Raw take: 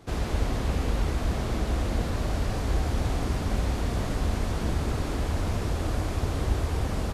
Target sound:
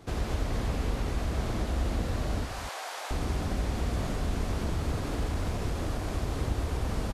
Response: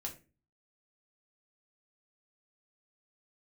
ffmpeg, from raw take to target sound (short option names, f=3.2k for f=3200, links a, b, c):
-filter_complex "[0:a]asettb=1/sr,asplit=3[a][b][c];[a]atrim=end=2.454[d];[b]atrim=start=2.45:end=3.11,asetpts=PTS-STARTPTS,afade=t=in:d=0.004:c=qsin,afade=t=out:st=0.656:d=0.004:c=qsin,highpass=f=670:w=0.5412,highpass=f=670:w=1.3066[e];[c]atrim=start=3.106[f];[d][e]acrossfade=d=0.004:c1=hsin:c2=qsin[g];[g][f]acrossfade=d=0.004:c1=qsin:c2=hsin,acompressor=threshold=-33dB:ratio=1.5,asettb=1/sr,asplit=3[h][i][j];[h]atrim=end=4.454[k];[i]atrim=start=4.45:end=6.19,asetpts=PTS-STARTPTS,afade=t=in:d=0.004:c=qsin,afade=t=out:st=1.736:d=0.004:c=qsin,asoftclip=type=hard:threshold=-24.5dB[l];[j]atrim=start=6.186[m];[k][l]acrossfade=d=0.004:c1=hsin:c2=qsin[n];[n][m]acrossfade=d=0.004:c1=qsin:c2=hsin,aecho=1:1:90.38|239.1:0.316|0.355"